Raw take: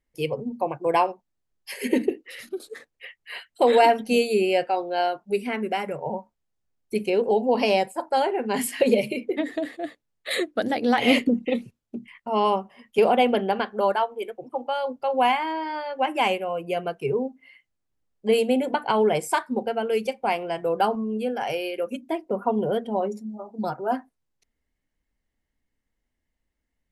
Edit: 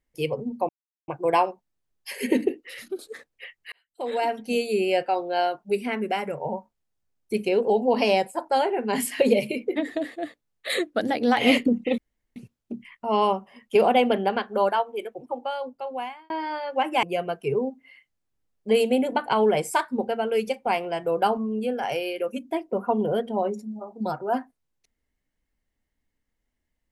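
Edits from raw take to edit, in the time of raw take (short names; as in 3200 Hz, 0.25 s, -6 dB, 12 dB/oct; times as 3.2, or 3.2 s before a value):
0.69 insert silence 0.39 s
3.33–4.7 fade in
11.59 insert room tone 0.38 s
14.41–15.53 fade out
16.26–16.61 cut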